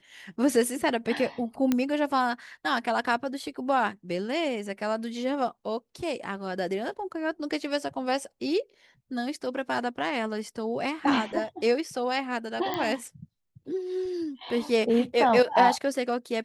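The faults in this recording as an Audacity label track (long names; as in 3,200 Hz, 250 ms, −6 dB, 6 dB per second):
1.720000	1.720000	click −11 dBFS
12.740000	12.740000	click −15 dBFS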